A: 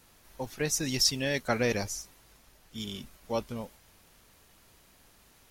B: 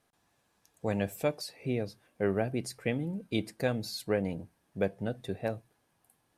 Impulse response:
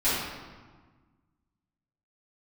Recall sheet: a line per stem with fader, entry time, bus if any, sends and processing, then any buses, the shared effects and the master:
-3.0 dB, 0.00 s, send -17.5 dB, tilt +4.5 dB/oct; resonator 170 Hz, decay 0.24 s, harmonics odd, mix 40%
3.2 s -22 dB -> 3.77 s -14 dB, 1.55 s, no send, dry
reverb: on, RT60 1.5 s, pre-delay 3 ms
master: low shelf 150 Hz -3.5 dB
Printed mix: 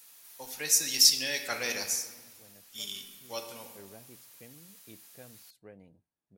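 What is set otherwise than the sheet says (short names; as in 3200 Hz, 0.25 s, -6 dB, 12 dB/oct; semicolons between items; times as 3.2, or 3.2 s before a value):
stem B -22.0 dB -> -30.0 dB; master: missing low shelf 150 Hz -3.5 dB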